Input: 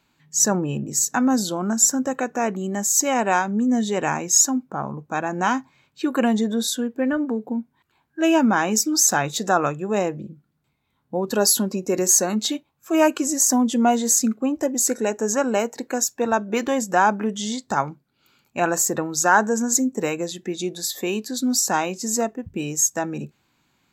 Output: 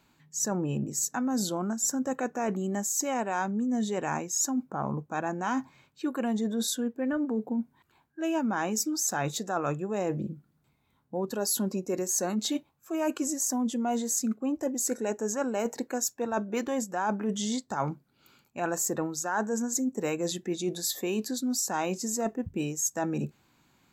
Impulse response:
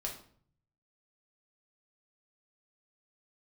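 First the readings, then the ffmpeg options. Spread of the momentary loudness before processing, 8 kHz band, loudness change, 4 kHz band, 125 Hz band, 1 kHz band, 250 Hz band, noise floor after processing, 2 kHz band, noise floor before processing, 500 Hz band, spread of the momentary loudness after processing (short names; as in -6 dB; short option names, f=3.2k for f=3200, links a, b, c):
11 LU, -10.5 dB, -9.0 dB, -9.0 dB, -4.5 dB, -10.0 dB, -7.5 dB, -70 dBFS, -11.5 dB, -70 dBFS, -8.0 dB, 6 LU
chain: -af "equalizer=f=3k:w=0.64:g=-3.5,areverse,acompressor=threshold=-29dB:ratio=6,areverse,volume=2dB"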